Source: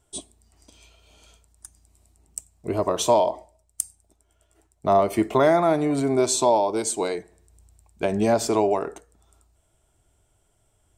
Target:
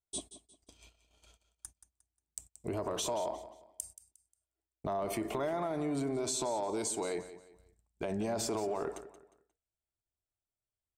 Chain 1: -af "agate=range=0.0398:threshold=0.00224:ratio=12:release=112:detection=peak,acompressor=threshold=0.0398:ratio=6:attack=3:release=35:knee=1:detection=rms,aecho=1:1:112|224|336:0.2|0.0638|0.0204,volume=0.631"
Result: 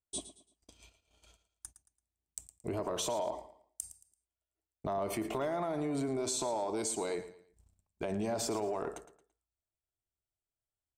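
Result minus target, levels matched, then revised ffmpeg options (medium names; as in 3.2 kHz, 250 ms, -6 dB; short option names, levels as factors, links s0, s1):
echo 66 ms early
-af "agate=range=0.0398:threshold=0.00224:ratio=12:release=112:detection=peak,acompressor=threshold=0.0398:ratio=6:attack=3:release=35:knee=1:detection=rms,aecho=1:1:178|356|534:0.2|0.0638|0.0204,volume=0.631"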